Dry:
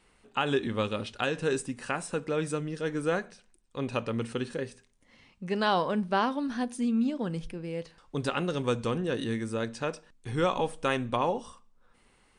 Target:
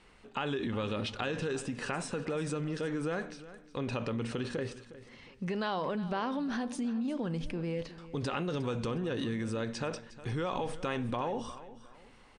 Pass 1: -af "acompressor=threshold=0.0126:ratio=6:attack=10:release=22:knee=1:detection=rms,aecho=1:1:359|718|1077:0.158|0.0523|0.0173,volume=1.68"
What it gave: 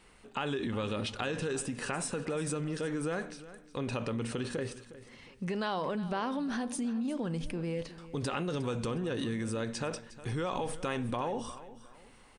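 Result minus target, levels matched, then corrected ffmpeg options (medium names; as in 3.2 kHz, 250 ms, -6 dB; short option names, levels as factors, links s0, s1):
8 kHz band +6.0 dB
-af "acompressor=threshold=0.0126:ratio=6:attack=10:release=22:knee=1:detection=rms,lowpass=6200,aecho=1:1:359|718|1077:0.158|0.0523|0.0173,volume=1.68"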